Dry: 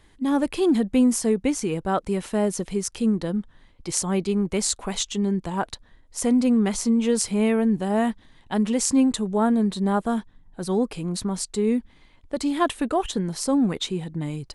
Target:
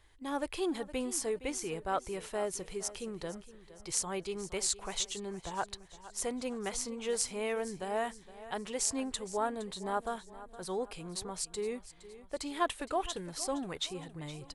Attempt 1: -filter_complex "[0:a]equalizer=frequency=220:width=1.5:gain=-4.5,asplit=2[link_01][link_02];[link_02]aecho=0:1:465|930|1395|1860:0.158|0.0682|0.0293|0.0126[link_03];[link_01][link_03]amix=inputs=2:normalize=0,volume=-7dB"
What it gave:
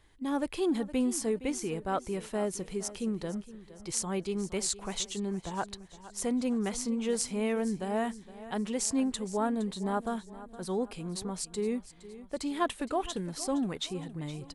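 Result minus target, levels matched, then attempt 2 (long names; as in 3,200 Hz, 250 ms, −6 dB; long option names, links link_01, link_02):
250 Hz band +5.5 dB
-filter_complex "[0:a]equalizer=frequency=220:width=1.5:gain=-16.5,asplit=2[link_01][link_02];[link_02]aecho=0:1:465|930|1395|1860:0.158|0.0682|0.0293|0.0126[link_03];[link_01][link_03]amix=inputs=2:normalize=0,volume=-7dB"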